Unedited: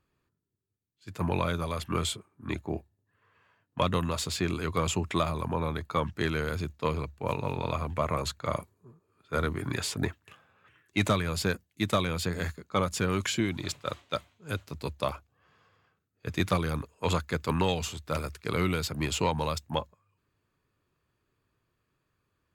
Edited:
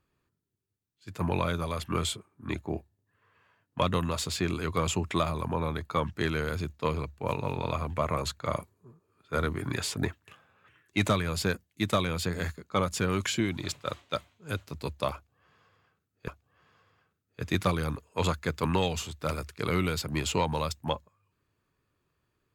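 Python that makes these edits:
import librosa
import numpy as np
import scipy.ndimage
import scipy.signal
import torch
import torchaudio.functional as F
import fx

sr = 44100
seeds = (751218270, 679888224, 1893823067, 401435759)

y = fx.edit(x, sr, fx.repeat(start_s=15.14, length_s=1.14, count=2), tone=tone)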